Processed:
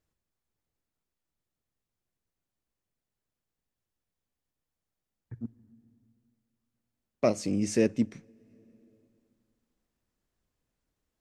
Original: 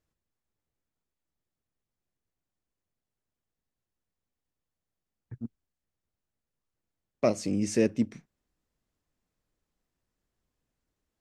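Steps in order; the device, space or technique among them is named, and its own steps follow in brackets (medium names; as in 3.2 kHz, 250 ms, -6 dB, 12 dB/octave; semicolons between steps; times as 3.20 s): compressed reverb return (on a send at -13.5 dB: reverberation RT60 2.0 s, pre-delay 39 ms + compression 10:1, threshold -41 dBFS, peak gain reduction 19.5 dB)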